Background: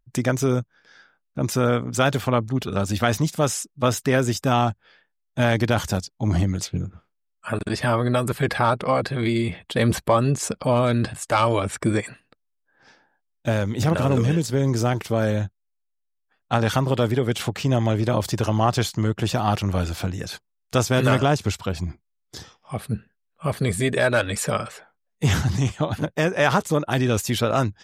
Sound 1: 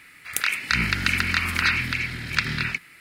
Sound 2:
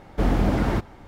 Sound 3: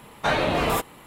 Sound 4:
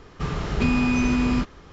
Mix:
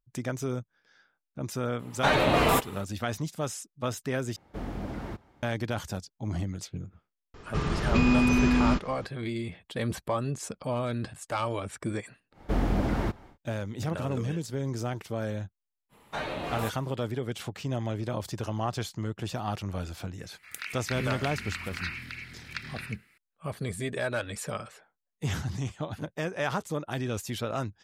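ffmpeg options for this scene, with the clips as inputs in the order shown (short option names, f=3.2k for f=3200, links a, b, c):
-filter_complex "[3:a]asplit=2[a][b];[2:a]asplit=2[c][d];[0:a]volume=-11dB[e];[a]dynaudnorm=f=110:g=3:m=11.5dB[f];[c]highpass=46[g];[e]asplit=2[h][i];[h]atrim=end=4.364[j];[g]atrim=end=1.07,asetpts=PTS-STARTPTS,volume=-14dB[k];[i]atrim=start=5.426[l];[f]atrim=end=1.06,asetpts=PTS-STARTPTS,volume=-8.5dB,afade=t=in:d=0.004:c=hsin,afade=t=out:st=1.056:d=0.004:c=hsin,adelay=1790[m];[4:a]atrim=end=1.72,asetpts=PTS-STARTPTS,volume=-1.5dB,afade=t=in:d=0.004:c=hsin,afade=t=out:st=1.716:d=0.004:c=hsin,adelay=7340[n];[d]atrim=end=1.07,asetpts=PTS-STARTPTS,volume=-5.5dB,afade=t=in:d=0.1,afade=t=out:st=0.97:d=0.1,adelay=12310[o];[b]atrim=end=1.06,asetpts=PTS-STARTPTS,volume=-11.5dB,afade=t=in:d=0.05,afade=t=out:st=1.01:d=0.05,adelay=15890[p];[1:a]atrim=end=3,asetpts=PTS-STARTPTS,volume=-14.5dB,afade=t=in:d=0.004:c=hsin,afade=t=out:st=2.996:d=0.004:c=hsin,adelay=20180[q];[j][k]acrossfade=d=0.004:c1=hsin:c2=hsin[r];[r][l]acrossfade=d=0.004:c1=hsin:c2=hsin[s];[s][m][n][o][p][q]amix=inputs=6:normalize=0"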